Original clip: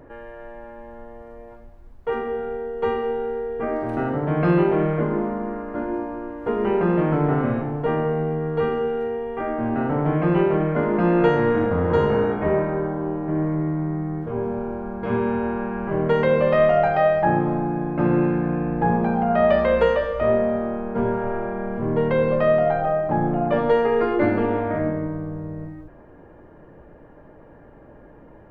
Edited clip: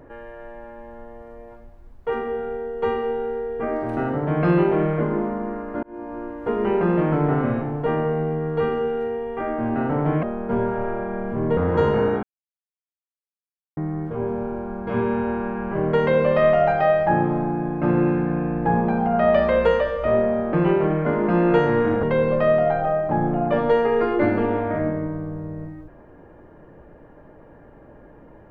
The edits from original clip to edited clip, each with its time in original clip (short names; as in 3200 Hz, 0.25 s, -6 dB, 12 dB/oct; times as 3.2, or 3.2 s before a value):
5.83–6.2 fade in
10.23–11.73 swap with 20.69–22.03
12.39–13.93 mute